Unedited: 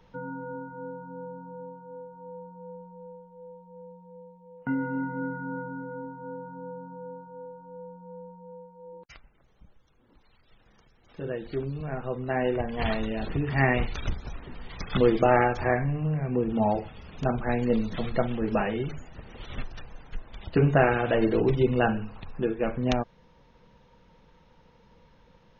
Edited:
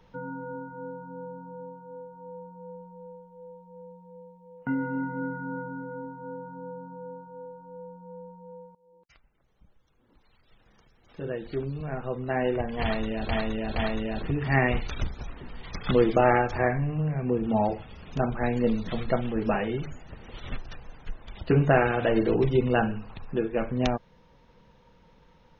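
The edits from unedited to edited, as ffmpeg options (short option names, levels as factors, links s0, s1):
-filter_complex "[0:a]asplit=4[s0][s1][s2][s3];[s0]atrim=end=8.75,asetpts=PTS-STARTPTS,afade=t=out:st=8.746:d=0.004:c=hsin:silence=0.0944061[s4];[s1]atrim=start=8.75:end=13.292,asetpts=PTS-STARTPTS,afade=t=in:d=2.46:c=qsin:silence=0.0944061[s5];[s2]atrim=start=12.818:end=13.292[s6];[s3]atrim=start=12.818[s7];[s4][s5]concat=n=2:v=0:a=1[s8];[s8][s6]acrossfade=d=0.004:c1=hsin:c2=hsin[s9];[s9][s7]acrossfade=d=0.004:c1=hsin:c2=hsin"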